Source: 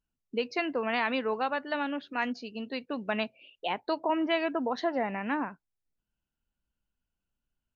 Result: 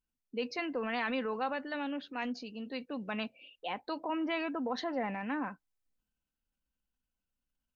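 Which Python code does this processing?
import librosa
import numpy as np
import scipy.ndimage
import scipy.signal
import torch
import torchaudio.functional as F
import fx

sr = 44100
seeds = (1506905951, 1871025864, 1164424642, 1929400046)

y = x + 0.37 * np.pad(x, (int(3.9 * sr / 1000.0), 0))[:len(x)]
y = fx.transient(y, sr, attack_db=-2, sustain_db=5)
y = F.gain(torch.from_numpy(y), -5.5).numpy()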